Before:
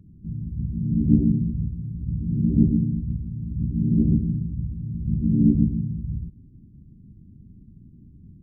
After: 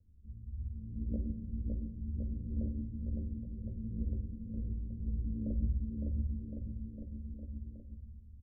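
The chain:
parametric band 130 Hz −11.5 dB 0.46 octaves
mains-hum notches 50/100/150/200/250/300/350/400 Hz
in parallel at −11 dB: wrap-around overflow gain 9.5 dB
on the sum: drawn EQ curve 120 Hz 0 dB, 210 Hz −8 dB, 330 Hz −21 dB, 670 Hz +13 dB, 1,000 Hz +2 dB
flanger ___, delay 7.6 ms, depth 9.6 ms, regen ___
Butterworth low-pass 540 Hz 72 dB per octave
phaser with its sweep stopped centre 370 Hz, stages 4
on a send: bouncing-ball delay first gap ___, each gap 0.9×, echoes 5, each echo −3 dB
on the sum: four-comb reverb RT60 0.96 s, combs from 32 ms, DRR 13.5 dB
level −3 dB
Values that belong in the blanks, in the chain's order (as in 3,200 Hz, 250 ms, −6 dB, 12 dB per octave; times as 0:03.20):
1.3 Hz, −55%, 560 ms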